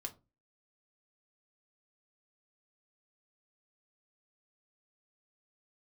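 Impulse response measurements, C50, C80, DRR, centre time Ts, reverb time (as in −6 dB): 18.0 dB, 25.0 dB, 2.5 dB, 7 ms, 0.25 s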